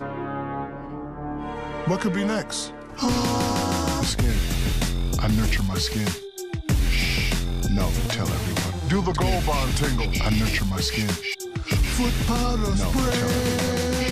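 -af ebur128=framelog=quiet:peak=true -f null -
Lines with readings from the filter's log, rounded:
Integrated loudness:
  I:         -24.4 LUFS
  Threshold: -34.5 LUFS
Loudness range:
  LRA:         1.9 LU
  Threshold: -44.3 LUFS
  LRA low:   -25.5 LUFS
  LRA high:  -23.6 LUFS
True peak:
  Peak:      -12.1 dBFS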